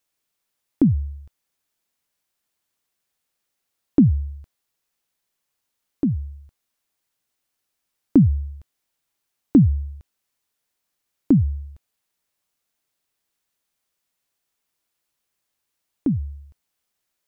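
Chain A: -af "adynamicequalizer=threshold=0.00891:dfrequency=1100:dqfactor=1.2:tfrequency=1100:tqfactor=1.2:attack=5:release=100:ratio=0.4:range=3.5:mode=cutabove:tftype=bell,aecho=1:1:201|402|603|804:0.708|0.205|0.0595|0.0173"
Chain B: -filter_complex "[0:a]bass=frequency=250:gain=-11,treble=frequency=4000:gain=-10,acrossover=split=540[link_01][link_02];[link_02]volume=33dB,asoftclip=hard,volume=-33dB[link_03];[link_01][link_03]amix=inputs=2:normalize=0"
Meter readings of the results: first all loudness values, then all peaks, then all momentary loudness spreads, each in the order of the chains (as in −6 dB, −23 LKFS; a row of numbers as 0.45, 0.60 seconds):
−20.5, −27.0 LKFS; −5.0, −9.0 dBFS; 20, 17 LU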